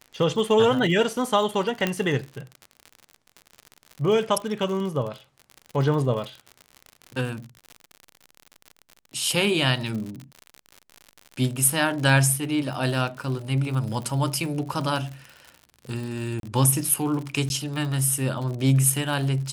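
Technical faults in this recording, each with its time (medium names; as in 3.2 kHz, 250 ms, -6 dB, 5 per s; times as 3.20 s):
crackle 72 per s -31 dBFS
1.87 s: pop -9 dBFS
16.40–16.43 s: dropout 32 ms
17.49–17.50 s: dropout 11 ms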